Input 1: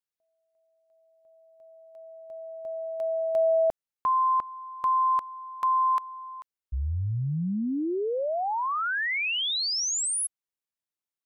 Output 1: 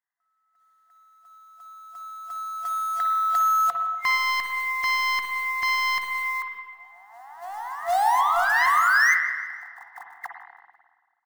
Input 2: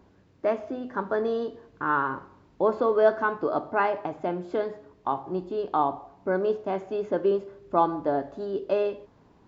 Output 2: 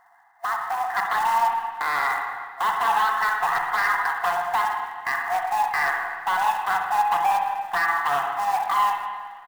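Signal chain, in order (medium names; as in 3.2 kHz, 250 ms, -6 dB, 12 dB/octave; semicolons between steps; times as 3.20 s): comb filter that takes the minimum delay 0.62 ms; FFT band-pass 680–2100 Hz; peaking EQ 1.4 kHz -11.5 dB 0.59 oct; in parallel at +2.5 dB: compression 12:1, threshold -46 dBFS; on the sum: peak limiter -28 dBFS; level rider gain up to 8 dB; saturation -25.5 dBFS; short-mantissa float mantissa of 2-bit; feedback delay 165 ms, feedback 47%, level -23 dB; spring tank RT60 1.5 s, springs 48/54/60 ms, chirp 75 ms, DRR 2.5 dB; trim +8.5 dB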